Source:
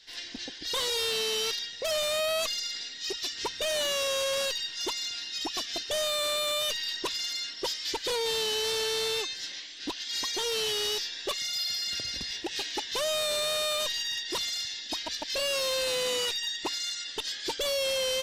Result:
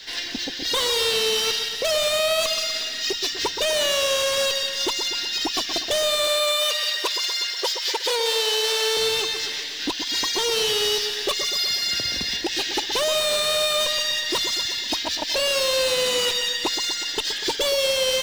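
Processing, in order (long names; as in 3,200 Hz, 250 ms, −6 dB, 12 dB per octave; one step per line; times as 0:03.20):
running median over 3 samples
0:06.27–0:08.97: high-pass filter 430 Hz 24 dB per octave
echo with a time of its own for lows and highs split 1,800 Hz, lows 122 ms, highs 177 ms, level −9 dB
multiband upward and downward compressor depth 40%
level +7 dB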